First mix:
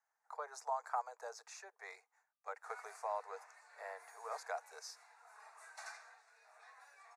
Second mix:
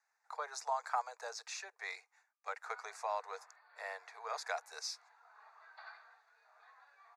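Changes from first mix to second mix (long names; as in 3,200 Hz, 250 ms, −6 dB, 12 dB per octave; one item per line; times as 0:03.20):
speech: add parametric band 3,400 Hz +14 dB 1.9 octaves
background: add Chebyshev low-pass with heavy ripple 4,700 Hz, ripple 6 dB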